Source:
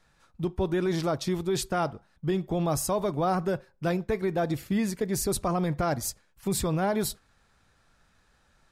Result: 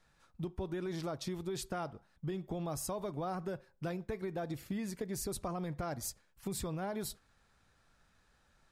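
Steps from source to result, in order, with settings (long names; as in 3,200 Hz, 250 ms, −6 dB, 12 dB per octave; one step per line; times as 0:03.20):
downward compressor 4 to 1, threshold −31 dBFS, peak gain reduction 7.5 dB
level −5 dB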